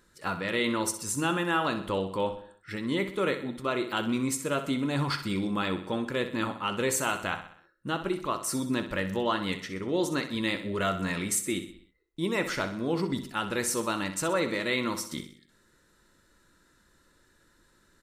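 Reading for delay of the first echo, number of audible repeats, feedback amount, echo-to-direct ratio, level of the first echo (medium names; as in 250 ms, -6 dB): 63 ms, 4, 50%, -9.5 dB, -11.0 dB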